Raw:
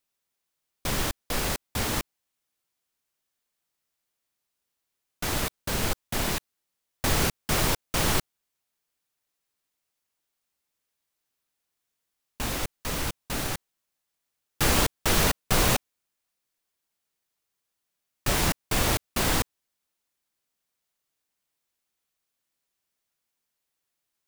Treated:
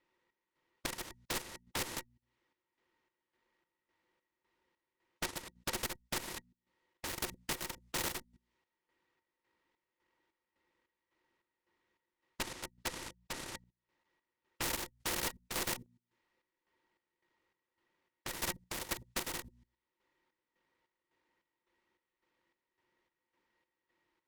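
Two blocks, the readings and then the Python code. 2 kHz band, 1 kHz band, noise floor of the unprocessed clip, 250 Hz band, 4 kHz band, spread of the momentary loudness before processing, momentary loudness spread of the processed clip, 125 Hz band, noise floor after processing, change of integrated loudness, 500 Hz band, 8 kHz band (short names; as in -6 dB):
-12.0 dB, -13.5 dB, -83 dBFS, -15.5 dB, -11.5 dB, 9 LU, 9 LU, -20.5 dB, under -85 dBFS, -13.0 dB, -14.5 dB, -11.5 dB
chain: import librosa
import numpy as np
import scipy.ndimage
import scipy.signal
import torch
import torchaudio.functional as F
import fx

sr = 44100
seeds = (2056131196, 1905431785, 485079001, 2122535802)

y = fx.self_delay(x, sr, depth_ms=0.094)
y = fx.env_lowpass(y, sr, base_hz=2600.0, full_db=-23.0)
y = fx.peak_eq(y, sr, hz=580.0, db=-7.0, octaves=0.93)
y = fx.hum_notches(y, sr, base_hz=60, count=4)
y = fx.transient(y, sr, attack_db=11, sustain_db=-3)
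y = fx.level_steps(y, sr, step_db=24)
y = fx.small_body(y, sr, hz=(360.0, 510.0, 910.0, 1900.0), ring_ms=50, db=15)
y = fx.tube_stage(y, sr, drive_db=29.0, bias=0.6)
y = fx.chopper(y, sr, hz=1.8, depth_pct=65, duty_pct=55)
y = fx.spectral_comp(y, sr, ratio=2.0)
y = y * 10.0 ** (4.0 / 20.0)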